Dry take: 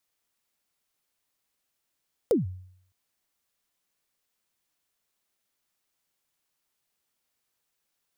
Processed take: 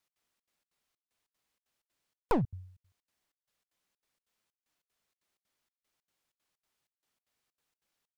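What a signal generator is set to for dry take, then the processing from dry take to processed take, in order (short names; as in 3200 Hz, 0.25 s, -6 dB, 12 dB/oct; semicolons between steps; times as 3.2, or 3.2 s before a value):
kick drum length 0.61 s, from 530 Hz, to 92 Hz, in 0.147 s, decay 0.66 s, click on, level -16 dB
one-sided fold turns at -26 dBFS; high shelf 7700 Hz -8.5 dB; step gate "x.xxx.xx.xxx..x" 190 bpm -60 dB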